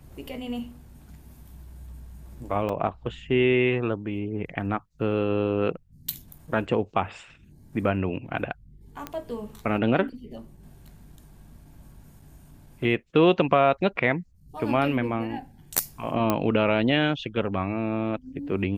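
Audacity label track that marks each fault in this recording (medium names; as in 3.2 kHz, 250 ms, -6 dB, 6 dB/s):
2.690000	2.690000	dropout 2.2 ms
9.070000	9.070000	pop -17 dBFS
16.300000	16.300000	pop -9 dBFS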